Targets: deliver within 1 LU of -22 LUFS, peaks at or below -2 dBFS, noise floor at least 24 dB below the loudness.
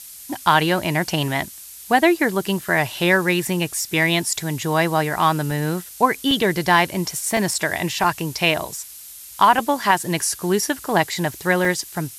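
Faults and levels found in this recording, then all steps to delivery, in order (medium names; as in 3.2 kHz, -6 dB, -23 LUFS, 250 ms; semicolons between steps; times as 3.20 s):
dropouts 7; longest dropout 1.8 ms; noise floor -40 dBFS; noise floor target -44 dBFS; loudness -20.0 LUFS; peak level -2.0 dBFS; loudness target -22.0 LUFS
-> interpolate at 2.61/5.51/6.31/7.37/8.04/9.59/11.65 s, 1.8 ms; noise print and reduce 6 dB; trim -2 dB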